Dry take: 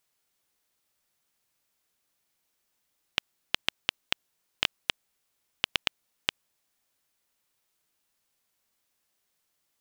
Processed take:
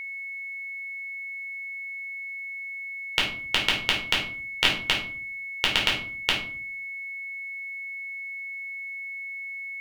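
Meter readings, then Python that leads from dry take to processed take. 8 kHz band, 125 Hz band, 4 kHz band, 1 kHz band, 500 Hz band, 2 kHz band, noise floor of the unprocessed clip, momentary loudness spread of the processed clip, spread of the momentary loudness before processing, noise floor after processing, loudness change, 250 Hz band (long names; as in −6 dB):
+6.5 dB, +11.5 dB, +7.5 dB, +8.5 dB, +9.0 dB, +11.5 dB, −78 dBFS, 10 LU, 5 LU, −36 dBFS, +4.0 dB, +11.0 dB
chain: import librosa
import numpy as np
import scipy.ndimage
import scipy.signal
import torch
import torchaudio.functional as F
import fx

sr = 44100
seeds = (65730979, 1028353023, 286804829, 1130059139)

y = fx.room_shoebox(x, sr, seeds[0], volume_m3=440.0, walls='furnished', distance_m=4.5)
y = y + 10.0 ** (-34.0 / 20.0) * np.sin(2.0 * np.pi * 2200.0 * np.arange(len(y)) / sr)
y = y * librosa.db_to_amplitude(1.0)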